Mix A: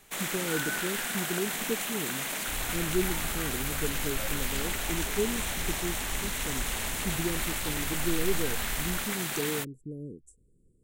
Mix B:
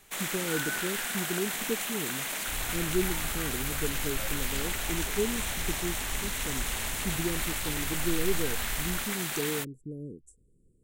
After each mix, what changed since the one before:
first sound: add bass shelf 470 Hz -5 dB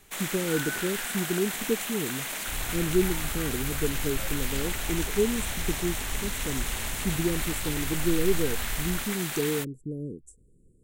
speech +5.0 dB; second sound +3.0 dB

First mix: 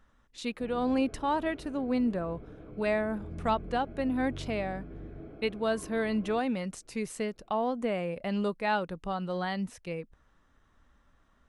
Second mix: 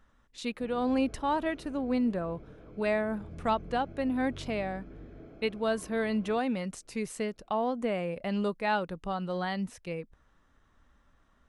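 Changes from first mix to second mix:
background: remove distance through air 210 m; reverb: off

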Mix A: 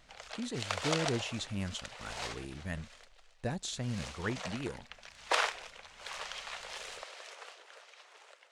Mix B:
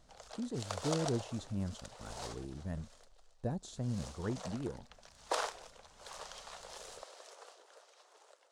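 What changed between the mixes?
speech: add treble shelf 2.8 kHz -9.5 dB; master: add peaking EQ 2.3 kHz -14.5 dB 1.5 oct

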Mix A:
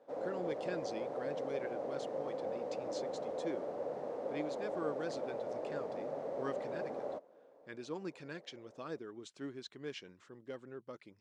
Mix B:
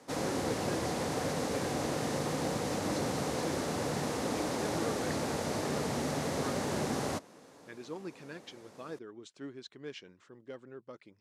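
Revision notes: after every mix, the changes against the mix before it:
background: remove band-pass filter 560 Hz, Q 3.2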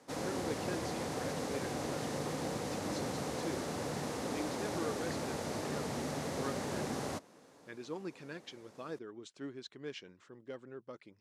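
background -4.5 dB

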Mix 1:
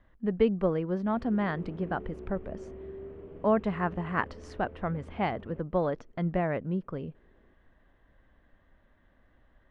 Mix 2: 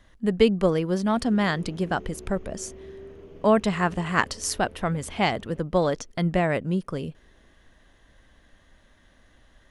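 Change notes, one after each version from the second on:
speech +5.5 dB; master: remove low-pass 1.8 kHz 12 dB/octave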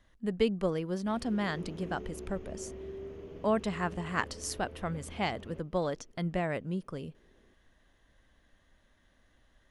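speech -9.0 dB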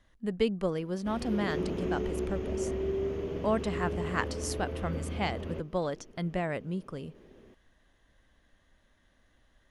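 background +11.0 dB

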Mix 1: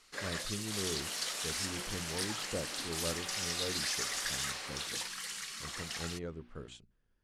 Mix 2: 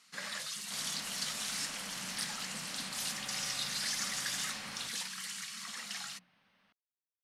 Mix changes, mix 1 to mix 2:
speech: muted; first sound: add high-pass 650 Hz 6 dB/octave; master: add resonant low shelf 270 Hz +10 dB, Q 3

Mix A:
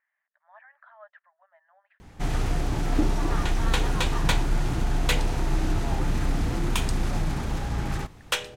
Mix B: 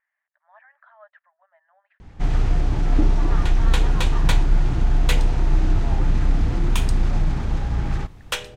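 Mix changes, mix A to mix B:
first sound: add distance through air 72 m; master: add bass shelf 110 Hz +8.5 dB

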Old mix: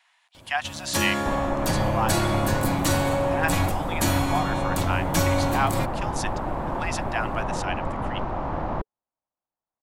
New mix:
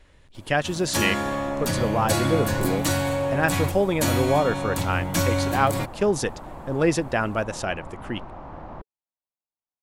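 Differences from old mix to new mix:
speech: remove rippled Chebyshev high-pass 680 Hz, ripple 3 dB; second sound -10.5 dB

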